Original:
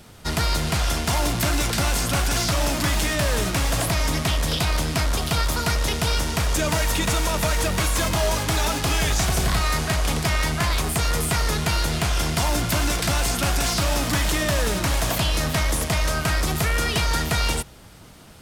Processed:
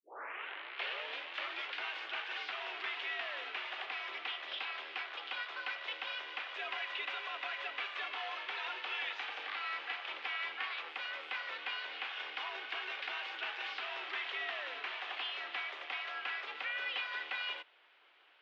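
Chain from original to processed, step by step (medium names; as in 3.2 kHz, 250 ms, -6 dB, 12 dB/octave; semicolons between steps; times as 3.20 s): tape start-up on the opening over 1.80 s; differentiator; mistuned SSB +89 Hz 250–2900 Hz; trim +1 dB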